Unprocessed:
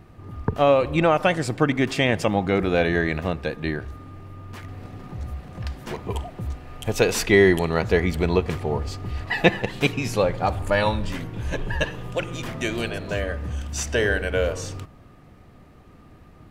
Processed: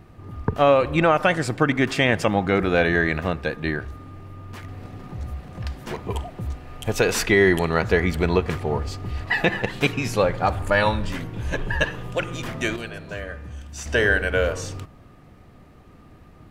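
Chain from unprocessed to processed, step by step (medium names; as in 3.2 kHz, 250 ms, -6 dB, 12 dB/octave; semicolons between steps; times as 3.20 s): dynamic bell 1.5 kHz, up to +5 dB, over -39 dBFS, Q 1.6; 12.76–13.86 s: feedback comb 160 Hz, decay 1.9 s, mix 60%; loudness maximiser +6 dB; trim -5.5 dB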